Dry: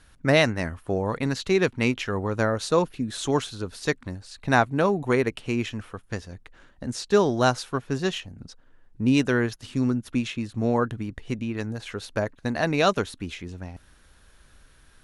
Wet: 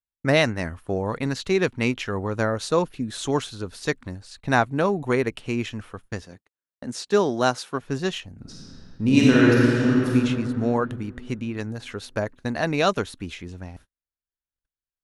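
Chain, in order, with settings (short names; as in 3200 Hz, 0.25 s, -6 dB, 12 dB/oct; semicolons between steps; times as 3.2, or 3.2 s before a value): 6.24–7.81 HPF 160 Hz 12 dB/oct; 8.41–10.13 reverb throw, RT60 2.8 s, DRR -6 dB; gate -45 dBFS, range -46 dB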